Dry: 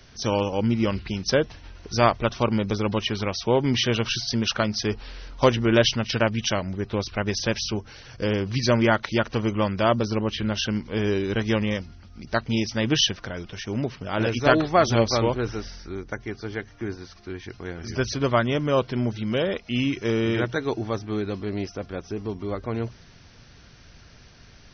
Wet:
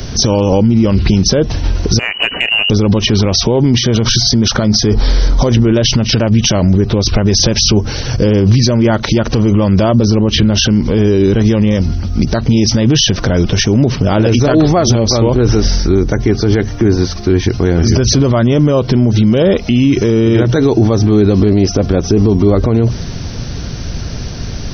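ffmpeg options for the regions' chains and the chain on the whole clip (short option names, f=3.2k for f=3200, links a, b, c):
-filter_complex "[0:a]asettb=1/sr,asplit=3[a][b][c];[a]atrim=end=1.994[d];[b]atrim=start=1.99:end=2.7,asetpts=PTS-STARTPTS,afade=t=in:d=0.004:c=qsin,afade=t=out:st=0.706:d=0.004:c=qsin,lowpass=f=2.6k:t=q:w=0.5098,lowpass=f=2.6k:t=q:w=0.6013,lowpass=f=2.6k:t=q:w=0.9,lowpass=f=2.6k:t=q:w=2.563,afreqshift=-3000,acompressor=threshold=-28dB:ratio=8:attack=3.2:release=140:knee=1:detection=peak[e];[c]atrim=start=2.696[f];[d][e]acrossfade=d=0.004:c1=hsin:c2=qsin[g];[g][f]acrossfade=d=0.004:c1=qsin:c2=hsin,asettb=1/sr,asplit=3[h][i][j];[h]atrim=end=3.784[k];[i]atrim=start=3.78:end=5.55,asetpts=PTS-STARTPTS,afade=t=in:d=0.004:c=qsin,afade=t=out:st=1.766:d=0.004:c=qsin,bandreject=f=2.7k:w=5.3,acompressor=threshold=-29dB:ratio=6:attack=3.2:release=140:knee=1:detection=peak[l];[j]atrim=start=5.546[m];[k][l]acrossfade=d=0.004:c1=hsin:c2=qsin[n];[n][m]acrossfade=d=0.004:c1=qsin:c2=hsin,equalizer=f=1.9k:w=0.43:g=-12,acompressor=threshold=-28dB:ratio=6,alimiter=level_in=31dB:limit=-1dB:release=50:level=0:latency=1,volume=-1dB"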